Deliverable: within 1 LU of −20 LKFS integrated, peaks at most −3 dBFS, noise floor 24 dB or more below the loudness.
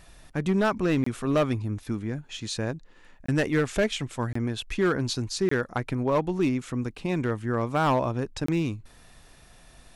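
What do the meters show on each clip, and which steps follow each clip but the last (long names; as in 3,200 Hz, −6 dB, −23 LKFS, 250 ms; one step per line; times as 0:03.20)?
share of clipped samples 0.9%; peaks flattened at −17.0 dBFS; number of dropouts 5; longest dropout 24 ms; integrated loudness −27.5 LKFS; sample peak −17.0 dBFS; target loudness −20.0 LKFS
→ clipped peaks rebuilt −17 dBFS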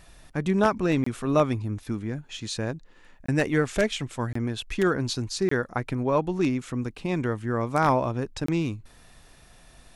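share of clipped samples 0.0%; number of dropouts 5; longest dropout 24 ms
→ repair the gap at 0:01.04/0:03.26/0:04.33/0:05.49/0:08.46, 24 ms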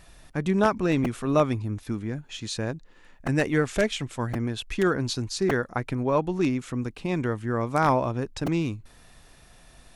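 number of dropouts 0; integrated loudness −27.0 LKFS; sample peak −8.0 dBFS; target loudness −20.0 LKFS
→ level +7 dB
brickwall limiter −3 dBFS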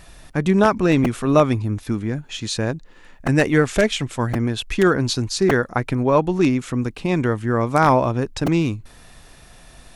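integrated loudness −20.0 LKFS; sample peak −3.0 dBFS; background noise floor −46 dBFS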